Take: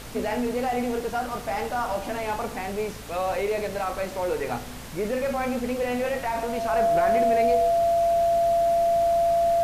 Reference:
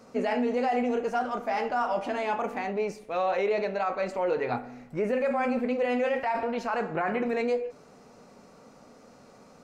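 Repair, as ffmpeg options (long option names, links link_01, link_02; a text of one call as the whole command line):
ffmpeg -i in.wav -af "bandreject=frequency=56:width_type=h:width=4,bandreject=frequency=112:width_type=h:width=4,bandreject=frequency=168:width_type=h:width=4,bandreject=frequency=224:width_type=h:width=4,bandreject=frequency=280:width_type=h:width=4,bandreject=frequency=680:width=30,afftdn=noise_reduction=18:noise_floor=-35" out.wav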